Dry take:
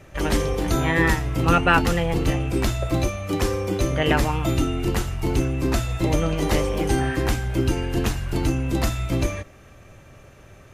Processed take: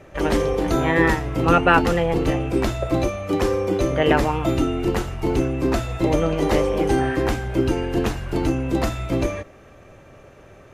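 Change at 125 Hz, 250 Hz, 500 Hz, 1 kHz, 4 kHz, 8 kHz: -1.5, +2.5, +4.5, +3.0, -1.5, -4.5 dB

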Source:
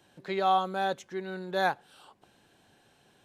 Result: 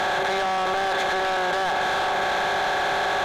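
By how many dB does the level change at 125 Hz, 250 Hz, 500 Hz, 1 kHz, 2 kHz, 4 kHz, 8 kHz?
+3.5 dB, +4.5 dB, +8.0 dB, +8.0 dB, +14.0 dB, +13.5 dB, n/a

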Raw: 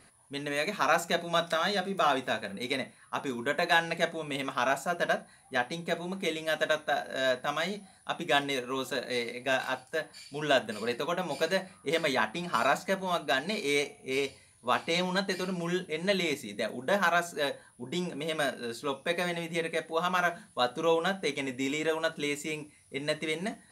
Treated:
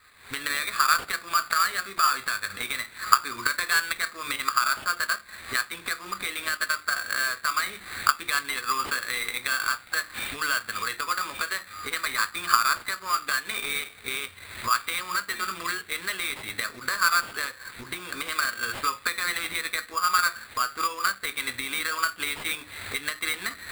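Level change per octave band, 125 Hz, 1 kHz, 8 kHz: -9.5, +5.0, +11.5 dB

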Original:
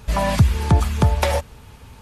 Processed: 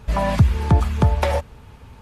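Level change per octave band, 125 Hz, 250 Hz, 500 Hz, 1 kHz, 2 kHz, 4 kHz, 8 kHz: 0.0, 0.0, 0.0, -0.5, -2.0, -5.0, -8.0 dB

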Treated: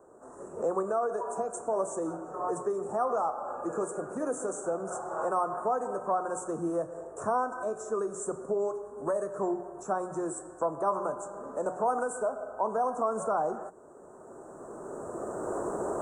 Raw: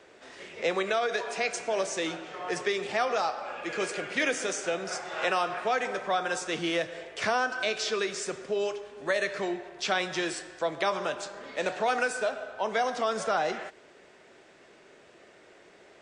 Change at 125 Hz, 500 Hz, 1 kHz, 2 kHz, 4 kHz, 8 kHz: +0.5 dB, 0.0 dB, 0.0 dB, -15.5 dB, under -30 dB, -4.0 dB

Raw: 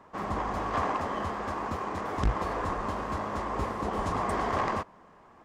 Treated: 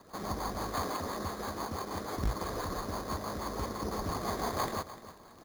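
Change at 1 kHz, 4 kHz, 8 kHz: -6.5, +3.0, +6.5 dB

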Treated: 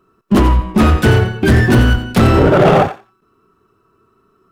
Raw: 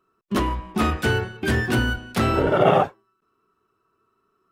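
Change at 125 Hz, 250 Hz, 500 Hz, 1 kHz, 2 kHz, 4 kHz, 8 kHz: +13.5, +11.5, +8.0, +6.5, +6.5, +6.5, +7.0 dB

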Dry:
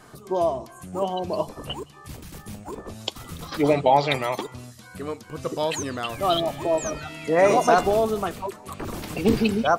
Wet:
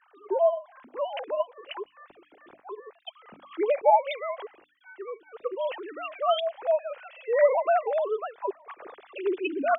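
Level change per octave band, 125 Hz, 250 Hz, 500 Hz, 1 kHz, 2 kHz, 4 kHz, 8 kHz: under -40 dB, -13.0 dB, -2.5 dB, -4.0 dB, -6.5 dB, -9.5 dB, under -40 dB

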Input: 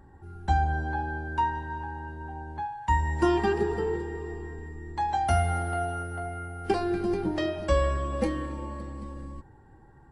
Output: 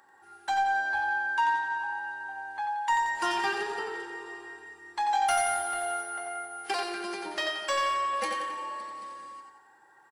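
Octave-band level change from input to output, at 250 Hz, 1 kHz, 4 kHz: -13.5, +2.0, +7.0 dB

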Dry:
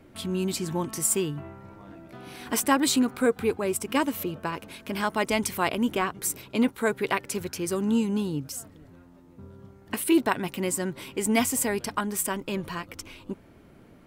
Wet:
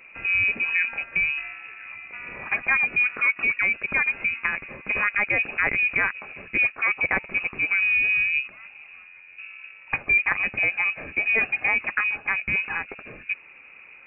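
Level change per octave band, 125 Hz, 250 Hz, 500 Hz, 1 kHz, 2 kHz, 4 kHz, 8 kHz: -9.0 dB, -17.0 dB, -11.0 dB, -3.5 dB, +14.0 dB, -7.5 dB, under -40 dB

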